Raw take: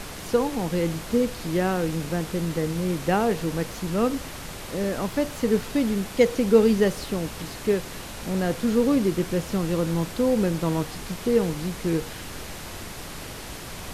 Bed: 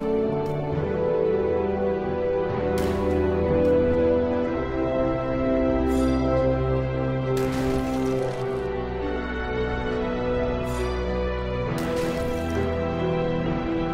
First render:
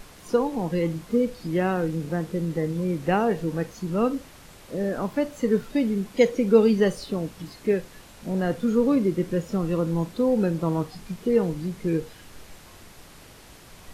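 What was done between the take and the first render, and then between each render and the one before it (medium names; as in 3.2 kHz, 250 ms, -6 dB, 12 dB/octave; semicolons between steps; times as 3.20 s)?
noise print and reduce 11 dB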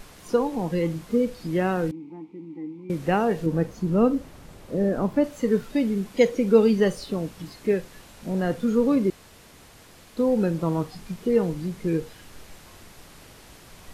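1.91–2.90 s: vowel filter u; 3.46–5.24 s: tilt shelf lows +5 dB; 9.10–10.17 s: room tone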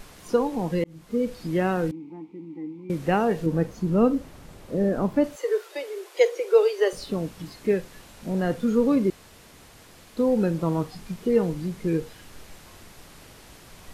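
0.84–1.33 s: fade in; 5.36–6.93 s: steep high-pass 340 Hz 96 dB/octave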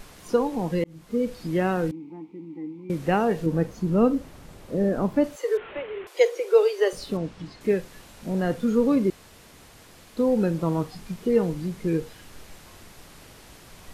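5.57–6.07 s: one-bit delta coder 16 kbps, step -35 dBFS; 7.17–7.61 s: distance through air 88 m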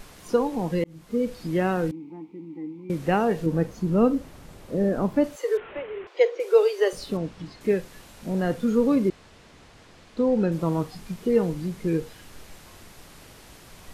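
5.60–6.40 s: distance through air 170 m; 9.09–10.52 s: distance through air 75 m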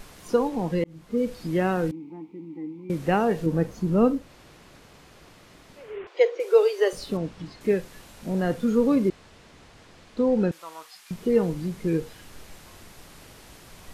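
0.48–1.16 s: treble shelf 9.6 kHz -> 5.4 kHz -6 dB; 4.21–5.87 s: room tone, crossfade 0.24 s; 10.51–11.11 s: high-pass 1.4 kHz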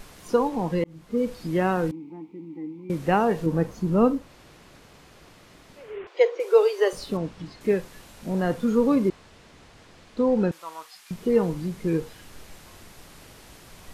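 dynamic bell 1 kHz, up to +5 dB, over -43 dBFS, Q 2.2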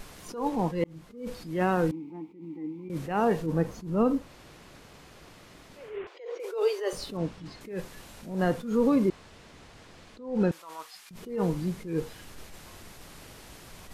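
peak limiter -15.5 dBFS, peak gain reduction 8 dB; attacks held to a fixed rise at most 110 dB/s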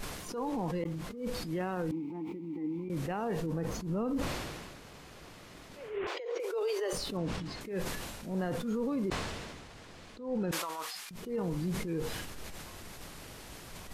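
peak limiter -26.5 dBFS, peak gain reduction 11 dB; decay stretcher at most 32 dB/s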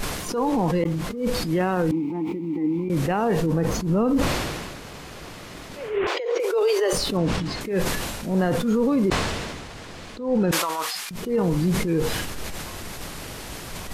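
trim +12 dB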